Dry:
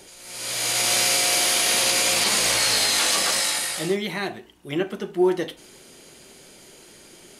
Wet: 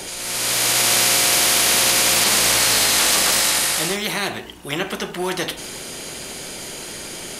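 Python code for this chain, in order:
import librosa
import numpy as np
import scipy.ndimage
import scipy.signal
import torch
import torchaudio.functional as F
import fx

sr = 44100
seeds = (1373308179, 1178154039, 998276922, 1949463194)

y = fx.spectral_comp(x, sr, ratio=2.0)
y = F.gain(torch.from_numpy(y), 4.5).numpy()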